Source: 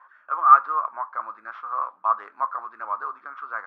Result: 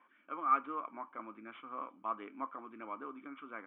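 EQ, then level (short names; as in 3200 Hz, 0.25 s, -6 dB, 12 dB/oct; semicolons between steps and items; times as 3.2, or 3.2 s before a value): vocal tract filter i; +16.0 dB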